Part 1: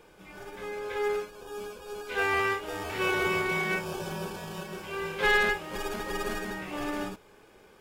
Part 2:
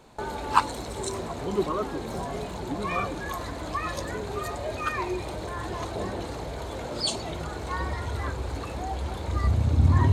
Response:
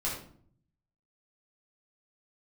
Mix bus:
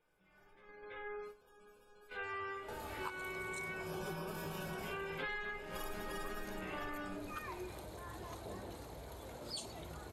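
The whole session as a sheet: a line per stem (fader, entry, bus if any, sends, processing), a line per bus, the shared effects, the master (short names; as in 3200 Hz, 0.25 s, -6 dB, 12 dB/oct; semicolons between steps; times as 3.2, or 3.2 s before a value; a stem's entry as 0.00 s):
3.67 s -19.5 dB -> 4.08 s -8 dB, 0.00 s, send -3.5 dB, spectral gate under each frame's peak -30 dB strong; bell 1700 Hz +3.5 dB 1.2 oct
-15.0 dB, 2.50 s, no send, dry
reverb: on, RT60 0.55 s, pre-delay 7 ms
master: gate -50 dBFS, range -8 dB; bell 12000 Hz +15 dB 0.55 oct; compressor 10:1, threshold -39 dBFS, peak gain reduction 19 dB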